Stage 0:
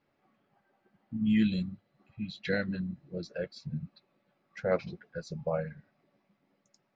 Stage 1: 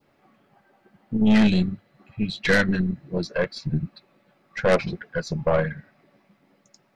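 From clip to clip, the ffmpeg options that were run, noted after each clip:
ffmpeg -i in.wav -af "adynamicequalizer=threshold=0.00251:dfrequency=1800:dqfactor=1.4:tfrequency=1800:tqfactor=1.4:attack=5:release=100:ratio=0.375:range=3:mode=boostabove:tftype=bell,aeval=exprs='0.188*(cos(1*acos(clip(val(0)/0.188,-1,1)))-cos(1*PI/2))+0.0335*(cos(5*acos(clip(val(0)/0.188,-1,1)))-cos(5*PI/2))+0.0211*(cos(8*acos(clip(val(0)/0.188,-1,1)))-cos(8*PI/2))':channel_layout=same,volume=6dB" out.wav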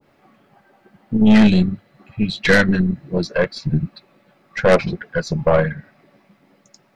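ffmpeg -i in.wav -af "adynamicequalizer=threshold=0.0158:dfrequency=1600:dqfactor=0.7:tfrequency=1600:tqfactor=0.7:attack=5:release=100:ratio=0.375:range=2.5:mode=cutabove:tftype=highshelf,volume=6dB" out.wav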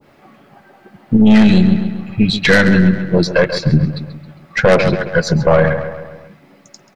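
ffmpeg -i in.wav -filter_complex "[0:a]asplit=2[link_01][link_02];[link_02]adelay=135,lowpass=frequency=4900:poles=1,volume=-13dB,asplit=2[link_03][link_04];[link_04]adelay=135,lowpass=frequency=4900:poles=1,volume=0.53,asplit=2[link_05][link_06];[link_06]adelay=135,lowpass=frequency=4900:poles=1,volume=0.53,asplit=2[link_07][link_08];[link_08]adelay=135,lowpass=frequency=4900:poles=1,volume=0.53,asplit=2[link_09][link_10];[link_10]adelay=135,lowpass=frequency=4900:poles=1,volume=0.53[link_11];[link_03][link_05][link_07][link_09][link_11]amix=inputs=5:normalize=0[link_12];[link_01][link_12]amix=inputs=2:normalize=0,alimiter=level_in=9.5dB:limit=-1dB:release=50:level=0:latency=1,volume=-1dB" out.wav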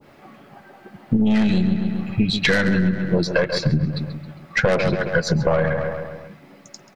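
ffmpeg -i in.wav -af "acompressor=threshold=-16dB:ratio=4" out.wav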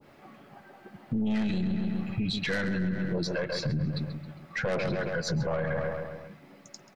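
ffmpeg -i in.wav -af "alimiter=limit=-16dB:level=0:latency=1:release=11,volume=-6dB" out.wav

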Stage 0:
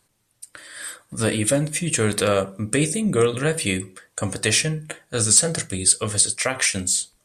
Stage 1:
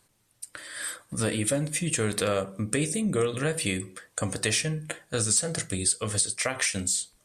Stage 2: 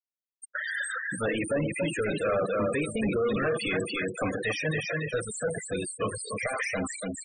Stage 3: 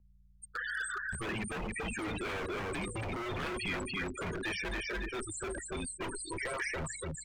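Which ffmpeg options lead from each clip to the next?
ffmpeg -i in.wav -af "acompressor=threshold=-28dB:ratio=2" out.wav
ffmpeg -i in.wav -filter_complex "[0:a]aecho=1:1:282|564|846|1128:0.447|0.152|0.0516|0.0176,asplit=2[link_01][link_02];[link_02]highpass=frequency=720:poles=1,volume=34dB,asoftclip=type=tanh:threshold=-11dB[link_03];[link_01][link_03]amix=inputs=2:normalize=0,lowpass=frequency=3100:poles=1,volume=-6dB,afftfilt=real='re*gte(hypot(re,im),0.158)':imag='im*gte(hypot(re,im),0.158)':win_size=1024:overlap=0.75,volume=-7.5dB" out.wav
ffmpeg -i in.wav -filter_complex "[0:a]aeval=exprs='val(0)+0.00158*(sin(2*PI*60*n/s)+sin(2*PI*2*60*n/s)/2+sin(2*PI*3*60*n/s)/3+sin(2*PI*4*60*n/s)/4+sin(2*PI*5*60*n/s)/5)':channel_layout=same,acrossover=split=2300[link_01][link_02];[link_01]aeval=exprs='0.0398*(abs(mod(val(0)/0.0398+3,4)-2)-1)':channel_layout=same[link_03];[link_03][link_02]amix=inputs=2:normalize=0,afreqshift=-110,volume=-4.5dB" out.wav

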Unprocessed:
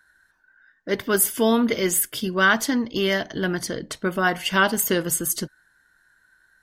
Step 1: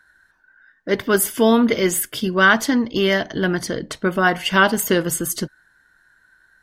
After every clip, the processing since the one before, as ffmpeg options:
ffmpeg -i in.wav -af "highshelf=frequency=5400:gain=-6.5,volume=4.5dB" out.wav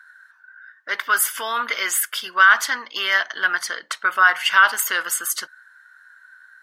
ffmpeg -i in.wav -af "alimiter=limit=-9dB:level=0:latency=1:release=13,highpass=frequency=1300:width_type=q:width=2.6,volume=1dB" out.wav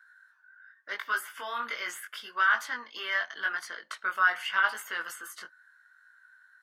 ffmpeg -i in.wav -filter_complex "[0:a]acrossover=split=410|1600|2800[link_01][link_02][link_03][link_04];[link_04]acompressor=threshold=-33dB:ratio=6[link_05];[link_01][link_02][link_03][link_05]amix=inputs=4:normalize=0,flanger=delay=18:depth=4.6:speed=0.81,volume=-7.5dB" out.wav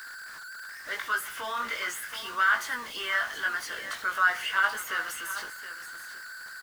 ffmpeg -i in.wav -af "aeval=exprs='val(0)+0.5*0.0126*sgn(val(0))':channel_layout=same,aecho=1:1:721:0.251" out.wav

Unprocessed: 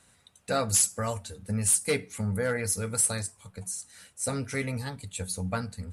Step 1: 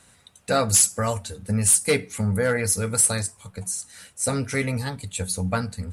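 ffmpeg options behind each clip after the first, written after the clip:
ffmpeg -i in.wav -af "acontrast=58" out.wav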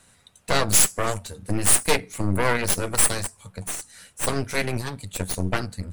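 ffmpeg -i in.wav -af "aeval=exprs='if(lt(val(0),0),0.708*val(0),val(0))':channel_layout=same,aeval=exprs='0.531*(cos(1*acos(clip(val(0)/0.531,-1,1)))-cos(1*PI/2))+0.133*(cos(8*acos(clip(val(0)/0.531,-1,1)))-cos(8*PI/2))':channel_layout=same" out.wav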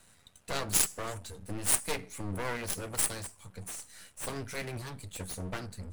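ffmpeg -i in.wav -af "aeval=exprs='if(lt(val(0),0),0.251*val(0),val(0))':channel_layout=same,volume=-2dB" out.wav

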